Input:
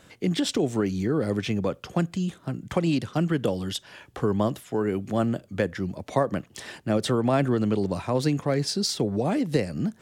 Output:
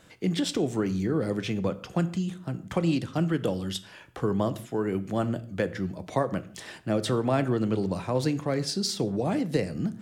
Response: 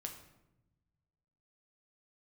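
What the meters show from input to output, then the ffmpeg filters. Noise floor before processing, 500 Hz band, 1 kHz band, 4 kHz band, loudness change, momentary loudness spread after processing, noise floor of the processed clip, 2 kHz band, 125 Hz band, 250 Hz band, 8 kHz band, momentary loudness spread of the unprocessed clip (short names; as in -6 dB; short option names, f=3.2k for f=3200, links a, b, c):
-56 dBFS, -2.5 dB, -2.5 dB, -2.5 dB, -2.0 dB, 6 LU, -50 dBFS, -2.5 dB, -2.0 dB, -2.0 dB, -2.5 dB, 7 LU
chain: -filter_complex "[0:a]asplit=2[a][b];[1:a]atrim=start_sample=2205,afade=t=out:st=0.27:d=0.01,atrim=end_sample=12348,asetrate=52920,aresample=44100[c];[b][c]afir=irnorm=-1:irlink=0,volume=0dB[d];[a][d]amix=inputs=2:normalize=0,volume=-6dB"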